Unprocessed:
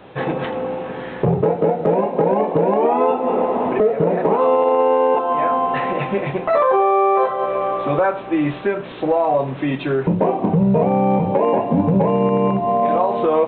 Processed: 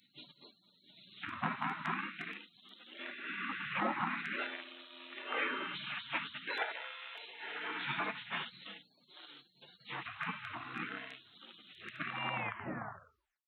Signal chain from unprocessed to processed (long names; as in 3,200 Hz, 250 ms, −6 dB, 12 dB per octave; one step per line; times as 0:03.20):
turntable brake at the end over 1.14 s
auto-filter high-pass sine 0.46 Hz 390–2,000 Hz
gate on every frequency bin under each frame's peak −30 dB weak
level +1.5 dB